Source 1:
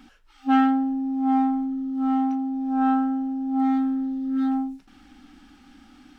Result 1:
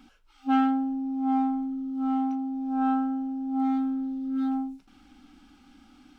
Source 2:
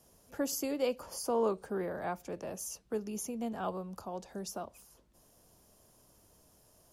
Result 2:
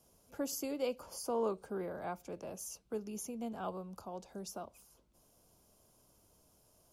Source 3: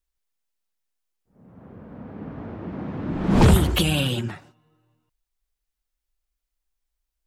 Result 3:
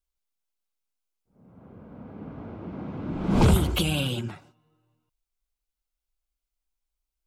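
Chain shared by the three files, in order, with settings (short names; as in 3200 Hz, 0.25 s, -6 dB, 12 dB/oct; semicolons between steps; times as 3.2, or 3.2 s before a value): notch 1800 Hz, Q 6.6; gain -4 dB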